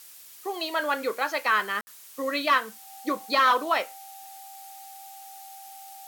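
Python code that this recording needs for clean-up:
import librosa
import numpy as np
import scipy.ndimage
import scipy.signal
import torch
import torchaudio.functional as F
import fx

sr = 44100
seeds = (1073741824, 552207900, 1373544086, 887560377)

y = fx.notch(x, sr, hz=780.0, q=30.0)
y = fx.fix_ambience(y, sr, seeds[0], print_start_s=0.0, print_end_s=0.5, start_s=1.81, end_s=1.87)
y = fx.noise_reduce(y, sr, print_start_s=0.0, print_end_s=0.5, reduce_db=23.0)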